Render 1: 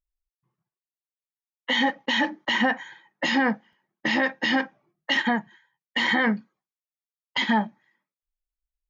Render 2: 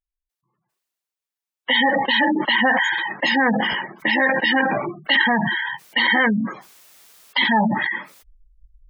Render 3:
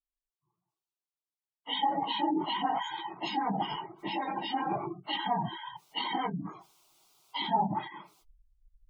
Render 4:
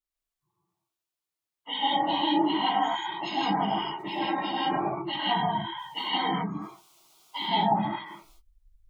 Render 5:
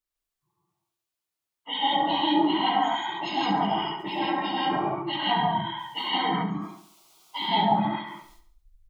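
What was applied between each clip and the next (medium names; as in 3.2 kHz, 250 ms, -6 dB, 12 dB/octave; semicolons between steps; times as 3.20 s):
spectral gate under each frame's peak -20 dB strong; bass shelf 240 Hz -10 dB; decay stretcher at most 26 dB/s; trim +6 dB
phase randomisation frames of 50 ms; treble shelf 5.9 kHz -11.5 dB; static phaser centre 350 Hz, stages 8; trim -7 dB
gated-style reverb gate 190 ms rising, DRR -4 dB
feedback delay 70 ms, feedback 46%, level -11 dB; trim +1.5 dB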